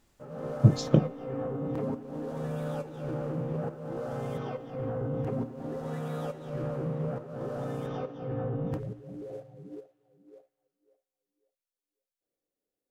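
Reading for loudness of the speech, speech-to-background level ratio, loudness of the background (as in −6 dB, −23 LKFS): −25.0 LKFS, 10.5 dB, −35.5 LKFS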